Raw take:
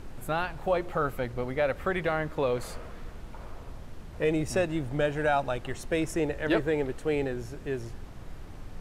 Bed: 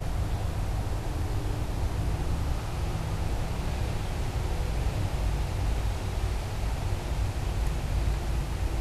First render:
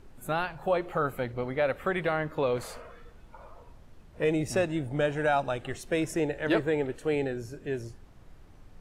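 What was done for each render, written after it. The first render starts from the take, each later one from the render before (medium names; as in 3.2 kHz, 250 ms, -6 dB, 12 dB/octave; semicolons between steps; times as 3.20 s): noise print and reduce 10 dB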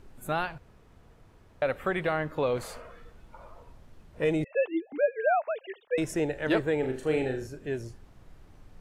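0.58–1.62 s: room tone; 4.44–5.98 s: formants replaced by sine waves; 6.79–7.47 s: flutter echo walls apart 6.6 m, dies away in 0.38 s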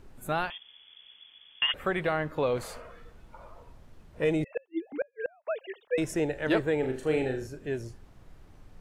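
0.50–1.74 s: frequency inversion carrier 3.4 kHz; 4.45–5.47 s: inverted gate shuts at -21 dBFS, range -35 dB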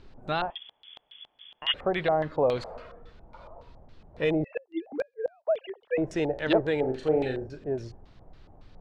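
LFO low-pass square 3.6 Hz 750–4200 Hz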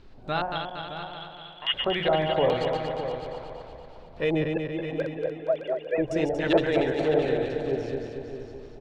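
backward echo that repeats 117 ms, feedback 75%, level -4.5 dB; delay 613 ms -10.5 dB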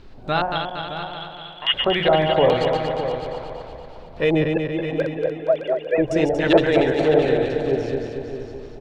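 trim +6.5 dB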